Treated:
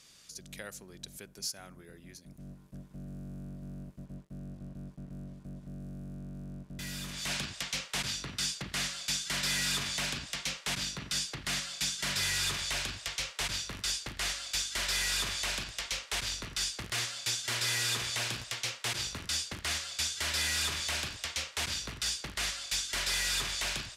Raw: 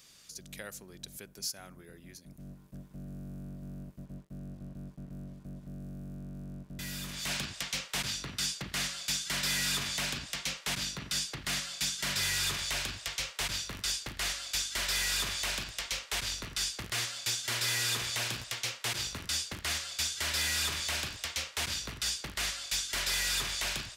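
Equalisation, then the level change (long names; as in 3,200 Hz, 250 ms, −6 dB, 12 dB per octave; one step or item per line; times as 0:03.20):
low-pass filter 12,000 Hz 12 dB per octave
0.0 dB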